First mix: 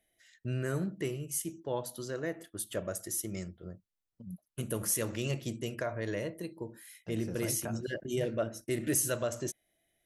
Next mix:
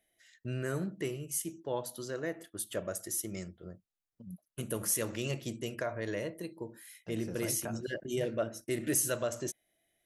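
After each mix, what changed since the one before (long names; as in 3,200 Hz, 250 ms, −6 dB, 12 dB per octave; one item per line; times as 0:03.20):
master: add low-shelf EQ 140 Hz −5.5 dB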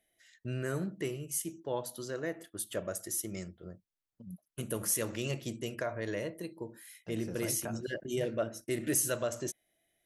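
nothing changed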